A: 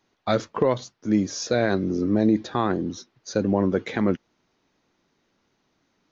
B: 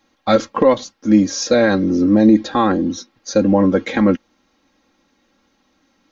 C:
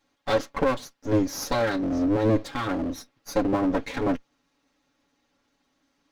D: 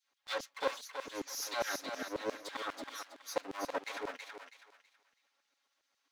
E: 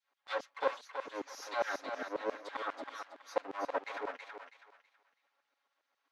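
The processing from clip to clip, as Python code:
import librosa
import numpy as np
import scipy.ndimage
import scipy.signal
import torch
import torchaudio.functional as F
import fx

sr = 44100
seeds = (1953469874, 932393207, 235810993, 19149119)

y1 = x + 0.78 * np.pad(x, (int(3.7 * sr / 1000.0), 0))[:len(x)]
y1 = F.gain(torch.from_numpy(y1), 6.0).numpy()
y2 = fx.lower_of_two(y1, sr, delay_ms=7.1)
y2 = F.gain(torch.from_numpy(y2), -8.0).numpy()
y3 = fx.filter_lfo_highpass(y2, sr, shape='saw_down', hz=7.4, low_hz=430.0, high_hz=4900.0, q=0.78)
y3 = fx.echo_thinned(y3, sr, ms=325, feedback_pct=31, hz=770.0, wet_db=-4.5)
y3 = F.gain(torch.from_numpy(y3), -6.0).numpy()
y4 = fx.bandpass_q(y3, sr, hz=830.0, q=0.61)
y4 = F.gain(torch.from_numpy(y4), 3.0).numpy()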